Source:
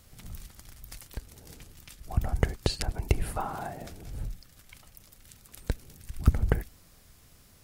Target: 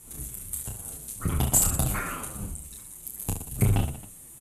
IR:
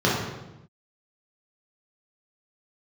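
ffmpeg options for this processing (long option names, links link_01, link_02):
-filter_complex "[0:a]acrossover=split=5900[link_01][link_02];[link_02]aeval=exprs='sgn(val(0))*max(abs(val(0))-0.00631,0)':channel_layout=same[link_03];[link_01][link_03]amix=inputs=2:normalize=0,aexciter=amount=15:drive=7.7:freq=4600,aresample=16000,asoftclip=type=tanh:threshold=-9.5dB,aresample=44100,asetrate=76440,aresample=44100,aecho=1:1:30|69|119.7|185.6|271.3:0.631|0.398|0.251|0.158|0.1,asplit=2[link_04][link_05];[link_05]adelay=8.2,afreqshift=-2.4[link_06];[link_04][link_06]amix=inputs=2:normalize=1,volume=3dB"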